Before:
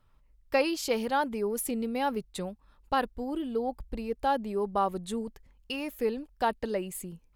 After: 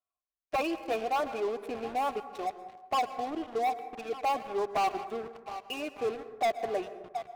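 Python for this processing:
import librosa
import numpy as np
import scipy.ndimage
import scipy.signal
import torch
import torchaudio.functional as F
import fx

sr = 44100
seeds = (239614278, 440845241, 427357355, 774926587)

p1 = fx.spec_quant(x, sr, step_db=15)
p2 = fx.vowel_filter(p1, sr, vowel='a')
p3 = fx.bass_treble(p2, sr, bass_db=-1, treble_db=-6)
p4 = p3 + 0.55 * np.pad(p3, (int(2.8 * sr / 1000.0), 0))[:len(p3)]
p5 = fx.echo_swing(p4, sr, ms=1200, ratio=1.5, feedback_pct=41, wet_db=-20.5)
p6 = fx.leveller(p5, sr, passes=5)
p7 = fx.peak_eq(p6, sr, hz=150.0, db=4.5, octaves=2.9)
p8 = fx.rev_plate(p7, sr, seeds[0], rt60_s=1.1, hf_ratio=0.35, predelay_ms=105, drr_db=14.0)
p9 = np.clip(10.0 ** (34.0 / 20.0) * p8, -1.0, 1.0) / 10.0 ** (34.0 / 20.0)
p10 = p8 + (p9 * 10.0 ** (-7.5 / 20.0))
y = p10 * 10.0 ** (-7.0 / 20.0)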